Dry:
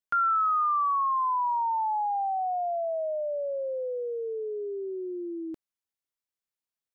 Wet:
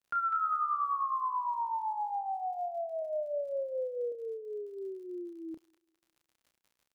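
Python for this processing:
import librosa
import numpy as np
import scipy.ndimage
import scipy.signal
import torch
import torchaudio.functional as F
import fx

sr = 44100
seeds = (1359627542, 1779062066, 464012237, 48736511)

y = fx.echo_wet_highpass(x, sr, ms=201, feedback_pct=38, hz=1400.0, wet_db=-5.0)
y = fx.dmg_crackle(y, sr, seeds[0], per_s=54.0, level_db=-47.0)
y = fx.low_shelf(y, sr, hz=450.0, db=8.0, at=(3.02, 4.12))
y = fx.doubler(y, sr, ms=31.0, db=-7.0)
y = y * 10.0 ** (-7.5 / 20.0)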